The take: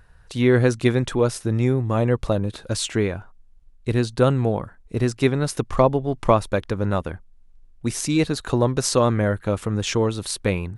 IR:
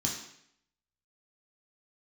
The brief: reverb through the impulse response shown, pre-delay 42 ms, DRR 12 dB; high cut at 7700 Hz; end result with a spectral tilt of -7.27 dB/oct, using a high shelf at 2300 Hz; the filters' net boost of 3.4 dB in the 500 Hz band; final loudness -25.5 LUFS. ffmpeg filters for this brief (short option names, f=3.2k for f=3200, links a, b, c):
-filter_complex "[0:a]lowpass=7.7k,equalizer=f=500:t=o:g=4.5,highshelf=f=2.3k:g=-8,asplit=2[a][b];[1:a]atrim=start_sample=2205,adelay=42[c];[b][c]afir=irnorm=-1:irlink=0,volume=-16dB[d];[a][d]amix=inputs=2:normalize=0,volume=-6dB"